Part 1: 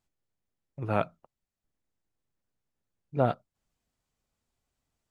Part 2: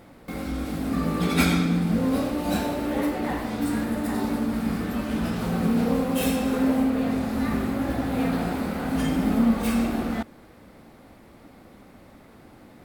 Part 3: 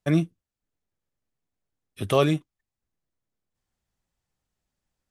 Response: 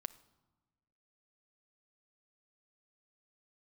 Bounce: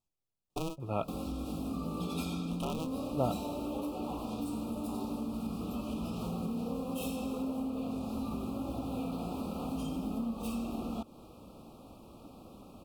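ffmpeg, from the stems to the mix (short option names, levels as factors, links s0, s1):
-filter_complex "[0:a]volume=0.501[s0];[1:a]adelay=800,volume=0.75[s1];[2:a]aeval=exprs='val(0)*sgn(sin(2*PI*160*n/s))':c=same,adelay=500,volume=0.631[s2];[s1][s2]amix=inputs=2:normalize=0,acompressor=threshold=0.0178:ratio=4,volume=1[s3];[s0][s3]amix=inputs=2:normalize=0,asuperstop=centerf=1800:order=20:qfactor=1.7"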